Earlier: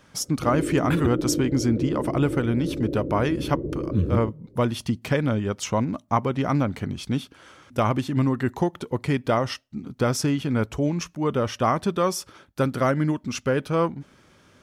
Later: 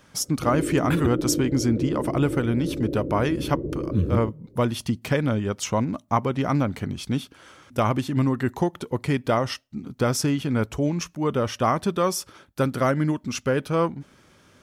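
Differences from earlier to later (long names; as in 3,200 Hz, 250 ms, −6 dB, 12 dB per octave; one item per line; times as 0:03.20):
speech: add high-shelf EQ 12,000 Hz −3 dB
master: add high-shelf EQ 9,400 Hz +7.5 dB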